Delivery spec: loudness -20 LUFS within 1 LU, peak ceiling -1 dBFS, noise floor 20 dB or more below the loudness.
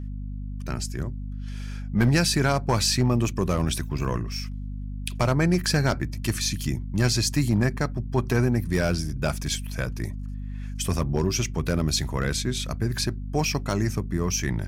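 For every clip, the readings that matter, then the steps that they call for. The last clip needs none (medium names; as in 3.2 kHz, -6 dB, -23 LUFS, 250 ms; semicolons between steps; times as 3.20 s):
clipped samples 0.3%; clipping level -13.5 dBFS; hum 50 Hz; highest harmonic 250 Hz; hum level -30 dBFS; loudness -25.5 LUFS; peak level -13.5 dBFS; loudness target -20.0 LUFS
-> clip repair -13.5 dBFS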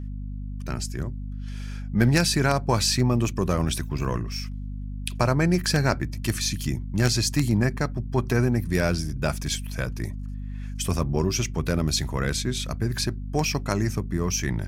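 clipped samples 0.0%; hum 50 Hz; highest harmonic 250 Hz; hum level -30 dBFS
-> de-hum 50 Hz, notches 5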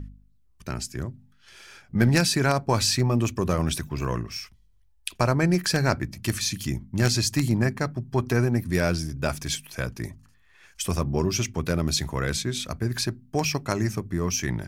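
hum not found; loudness -25.5 LUFS; peak level -4.0 dBFS; loudness target -20.0 LUFS
-> trim +5.5 dB; peak limiter -1 dBFS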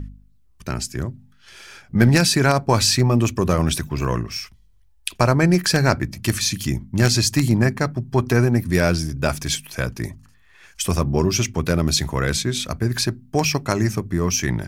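loudness -20.0 LUFS; peak level -1.0 dBFS; noise floor -54 dBFS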